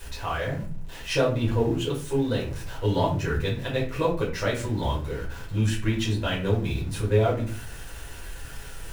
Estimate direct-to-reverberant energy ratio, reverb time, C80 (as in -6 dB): -6.0 dB, 0.40 s, 13.0 dB